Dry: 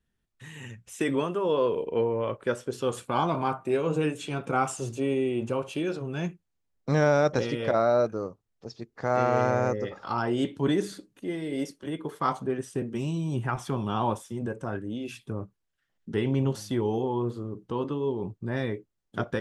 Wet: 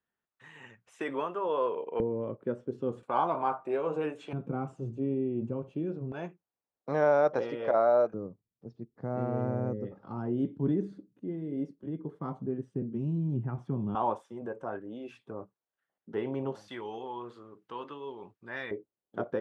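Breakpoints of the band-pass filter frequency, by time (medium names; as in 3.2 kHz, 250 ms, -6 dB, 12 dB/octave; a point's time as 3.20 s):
band-pass filter, Q 0.99
990 Hz
from 2.00 s 230 Hz
from 3.03 s 790 Hz
from 4.33 s 180 Hz
from 6.12 s 740 Hz
from 8.14 s 180 Hz
from 13.95 s 720 Hz
from 16.68 s 1.8 kHz
from 18.71 s 510 Hz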